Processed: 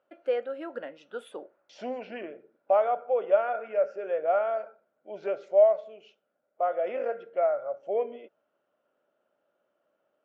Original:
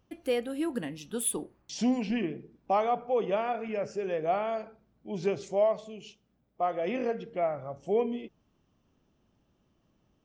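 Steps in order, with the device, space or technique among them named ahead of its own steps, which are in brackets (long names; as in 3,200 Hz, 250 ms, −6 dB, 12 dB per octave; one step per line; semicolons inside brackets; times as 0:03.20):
tin-can telephone (band-pass filter 480–2,600 Hz; hollow resonant body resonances 580/1,400 Hz, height 15 dB, ringing for 25 ms)
level −4 dB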